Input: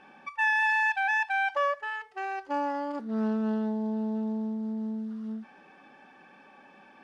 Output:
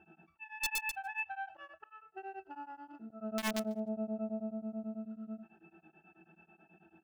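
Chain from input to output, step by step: octave resonator E, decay 0.15 s; auto swell 0.323 s; wrapped overs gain 36.5 dB; feedback echo 0.145 s, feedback 35%, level -24 dB; beating tremolo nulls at 9.2 Hz; gain +10 dB

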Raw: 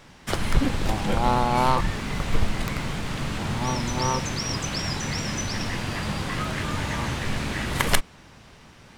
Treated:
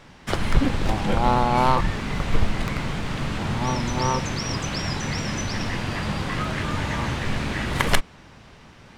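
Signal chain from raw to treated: high shelf 6700 Hz -9 dB; gain +2 dB

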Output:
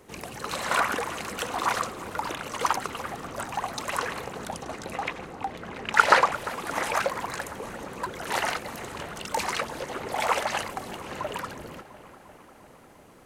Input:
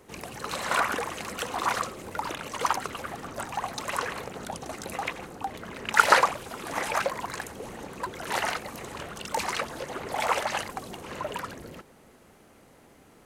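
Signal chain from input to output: 4.63–6.32 high shelf 8300 Hz -12 dB; darkening echo 0.349 s, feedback 73%, low-pass 3900 Hz, level -16 dB; gain +1 dB

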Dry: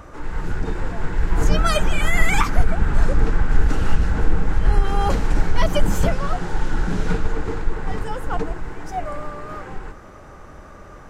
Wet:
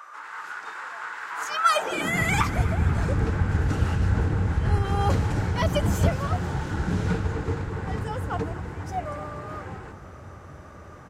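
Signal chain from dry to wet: frequency-shifting echo 0.241 s, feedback 57%, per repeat +41 Hz, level -16.5 dB; high-pass sweep 1200 Hz -> 86 Hz, 1.68–2.28; gain -3.5 dB

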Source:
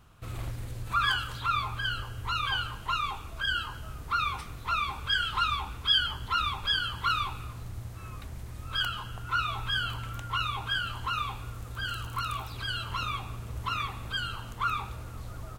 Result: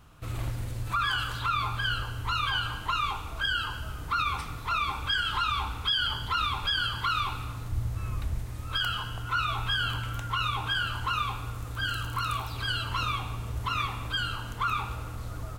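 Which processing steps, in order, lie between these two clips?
7.71–8.42 low shelf 120 Hz +9.5 dB; FDN reverb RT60 1.4 s, high-frequency decay 0.8×, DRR 9 dB; limiter -21.5 dBFS, peak gain reduction 7.5 dB; gain +2.5 dB

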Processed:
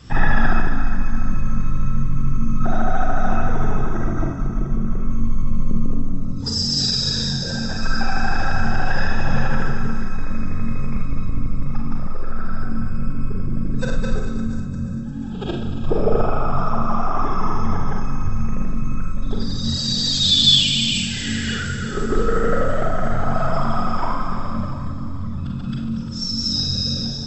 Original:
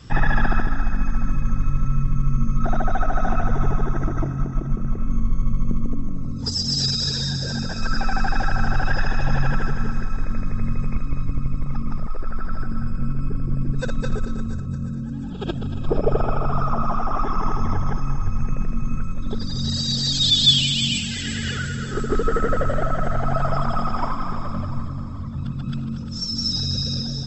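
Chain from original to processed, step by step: Schroeder reverb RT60 0.45 s, combs from 32 ms, DRR 1.5 dB

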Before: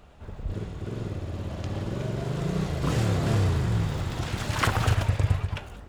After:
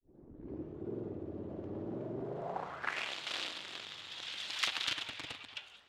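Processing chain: tape start at the beginning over 0.79 s; added harmonics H 7 -10 dB, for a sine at -9.5 dBFS; band-pass sweep 350 Hz -> 3400 Hz, 2.23–3.17; gain +1 dB

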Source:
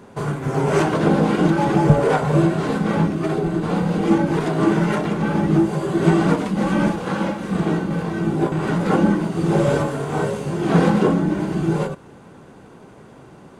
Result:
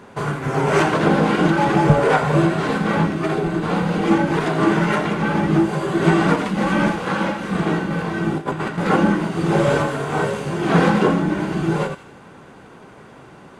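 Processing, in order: 8.38–8.78 negative-ratio compressor -25 dBFS, ratio -0.5; bell 1900 Hz +6.5 dB 2.7 oct; thin delay 83 ms, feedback 52%, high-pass 1400 Hz, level -11.5 dB; gain -1 dB

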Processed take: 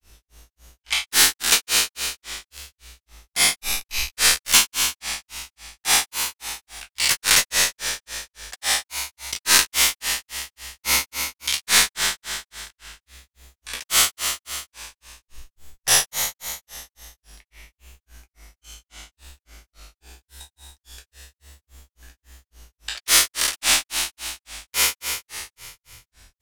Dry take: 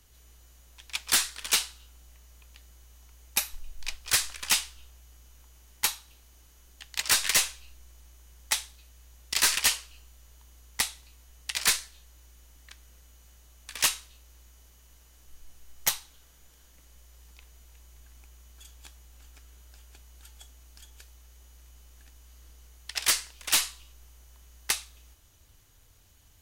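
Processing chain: spectral trails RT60 2.36 s; grains 0.23 s, grains 3.6/s, spray 25 ms, pitch spread up and down by 3 st; gain +7 dB

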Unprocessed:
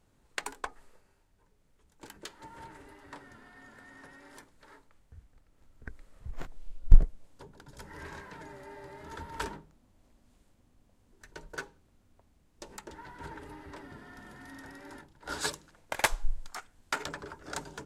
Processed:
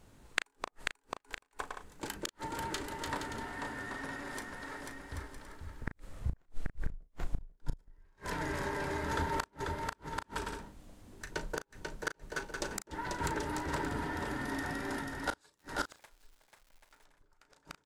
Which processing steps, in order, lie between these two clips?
on a send: bouncing-ball echo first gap 0.49 s, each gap 0.6×, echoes 5; on the sum: flipped gate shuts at -28 dBFS, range -41 dB; doubler 36 ms -11.5 dB; 15.57–17.05 crackle 360/s -63 dBFS; gain +8.5 dB

